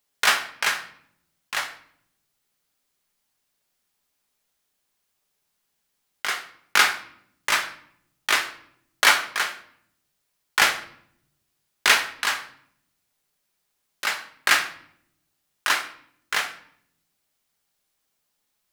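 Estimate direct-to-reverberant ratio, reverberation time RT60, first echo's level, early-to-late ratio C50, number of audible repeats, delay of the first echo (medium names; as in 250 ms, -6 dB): 5.0 dB, 0.65 s, no echo, 12.0 dB, no echo, no echo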